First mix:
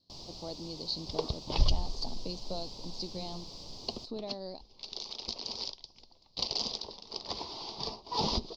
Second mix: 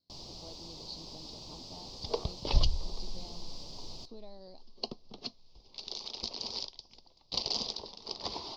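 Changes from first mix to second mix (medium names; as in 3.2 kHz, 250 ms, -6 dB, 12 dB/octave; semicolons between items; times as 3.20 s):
speech -10.0 dB; second sound: entry +0.95 s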